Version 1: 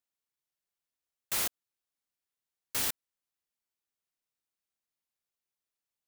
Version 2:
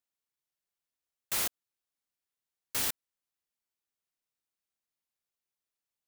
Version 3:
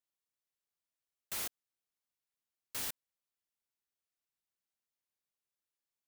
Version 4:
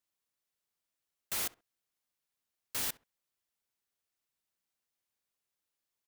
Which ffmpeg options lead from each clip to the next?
ffmpeg -i in.wav -af anull out.wav
ffmpeg -i in.wav -af "asoftclip=type=tanh:threshold=-29.5dB,volume=-4dB" out.wav
ffmpeg -i in.wav -filter_complex "[0:a]asplit=2[link_01][link_02];[link_02]adelay=66,lowpass=frequency=1700:poles=1,volume=-18.5dB,asplit=2[link_03][link_04];[link_04]adelay=66,lowpass=frequency=1700:poles=1,volume=0.26[link_05];[link_01][link_03][link_05]amix=inputs=3:normalize=0,volume=4dB" out.wav

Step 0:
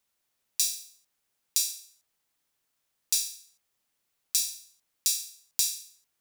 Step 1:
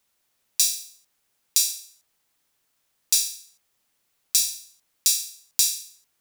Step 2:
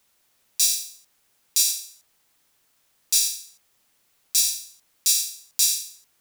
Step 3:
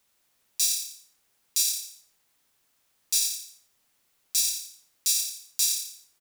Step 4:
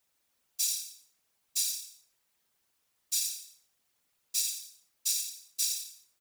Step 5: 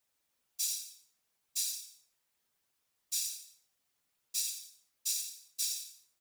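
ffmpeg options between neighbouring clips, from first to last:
ffmpeg -i in.wav -af "acontrast=32,volume=1dB" out.wav
ffmpeg -i in.wav -af "alimiter=level_in=11.5dB:limit=-1dB:release=50:level=0:latency=1,volume=-5.5dB" out.wav
ffmpeg -i in.wav -filter_complex "[0:a]asplit=4[link_01][link_02][link_03][link_04];[link_02]adelay=86,afreqshift=-35,volume=-9dB[link_05];[link_03]adelay=172,afreqshift=-70,volume=-19.5dB[link_06];[link_04]adelay=258,afreqshift=-105,volume=-29.9dB[link_07];[link_01][link_05][link_06][link_07]amix=inputs=4:normalize=0,volume=-4.5dB" out.wav
ffmpeg -i in.wav -af "afftfilt=real='hypot(re,im)*cos(2*PI*random(0))':imag='hypot(re,im)*sin(2*PI*random(1))':win_size=512:overlap=0.75" out.wav
ffmpeg -i in.wav -af "flanger=delay=7.3:depth=9.7:regen=-40:speed=1.1:shape=triangular" out.wav

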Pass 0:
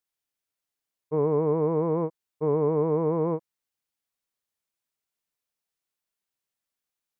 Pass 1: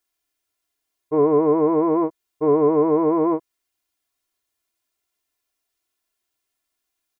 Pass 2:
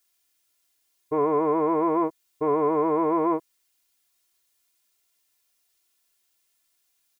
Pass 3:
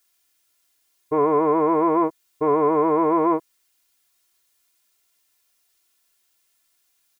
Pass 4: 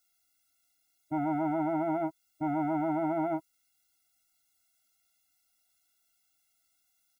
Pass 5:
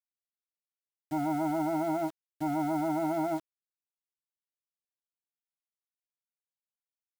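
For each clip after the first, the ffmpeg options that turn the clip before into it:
ffmpeg -i in.wav -af "aecho=1:1:2.9:0.9,volume=5.5dB" out.wav
ffmpeg -i in.wav -filter_complex "[0:a]highshelf=frequency=2100:gain=9,acrossover=split=720[link_01][link_02];[link_01]alimiter=limit=-19.5dB:level=0:latency=1[link_03];[link_03][link_02]amix=inputs=2:normalize=0" out.wav
ffmpeg -i in.wav -af "equalizer=frequency=1400:width=1.5:gain=2,volume=3.5dB" out.wav
ffmpeg -i in.wav -af "bandreject=frequency=990:width=9.4,afftfilt=real='re*eq(mod(floor(b*sr/1024/320),2),0)':imag='im*eq(mod(floor(b*sr/1024/320),2),0)':win_size=1024:overlap=0.75,volume=-3.5dB" out.wav
ffmpeg -i in.wav -af "acrusher=bits=7:mix=0:aa=0.000001" out.wav

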